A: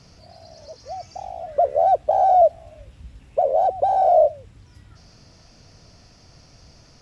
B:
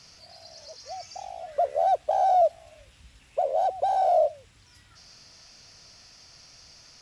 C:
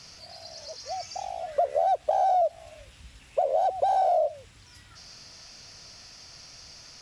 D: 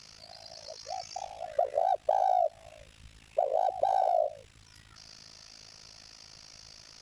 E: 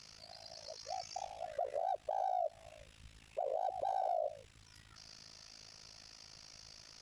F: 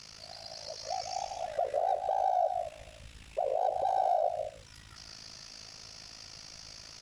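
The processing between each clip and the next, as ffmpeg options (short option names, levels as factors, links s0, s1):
-af "tiltshelf=f=880:g=-8.5,volume=0.631"
-af "acompressor=threshold=0.0631:ratio=10,volume=1.58"
-af "tremolo=f=54:d=0.919"
-af "alimiter=limit=0.0668:level=0:latency=1:release=52,volume=0.596"
-af "aecho=1:1:151.6|209.9:0.447|0.316,volume=2.11"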